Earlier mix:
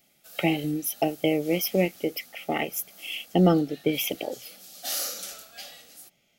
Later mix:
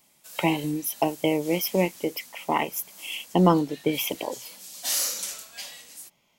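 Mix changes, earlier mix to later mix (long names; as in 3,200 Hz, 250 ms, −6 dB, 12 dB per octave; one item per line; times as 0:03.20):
background: add octave-band graphic EQ 1,000/2,000/8,000 Hz −8/+6/+8 dB
master: remove Butterworth band-reject 990 Hz, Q 2.4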